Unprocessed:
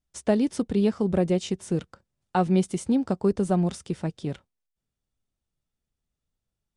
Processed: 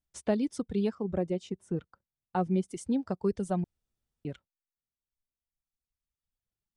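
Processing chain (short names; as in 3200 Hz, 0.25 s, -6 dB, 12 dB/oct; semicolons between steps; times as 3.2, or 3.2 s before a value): reverb removal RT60 1.9 s; 0.95–2.68 high shelf 2500 Hz -11.5 dB; 3.64–4.25 room tone; gain -5.5 dB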